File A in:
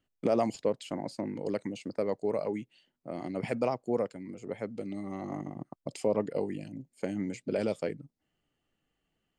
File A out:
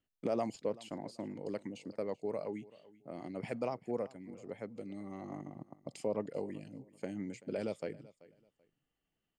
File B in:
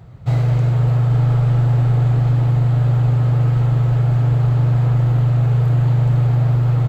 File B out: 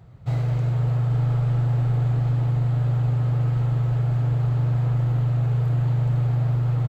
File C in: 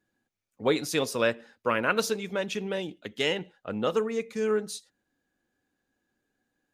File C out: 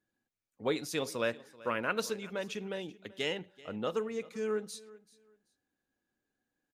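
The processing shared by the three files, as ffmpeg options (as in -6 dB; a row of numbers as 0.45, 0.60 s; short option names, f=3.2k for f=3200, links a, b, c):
-af "aecho=1:1:384|768:0.0944|0.0217,volume=-7dB"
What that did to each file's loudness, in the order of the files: -7.0, -6.5, -7.0 LU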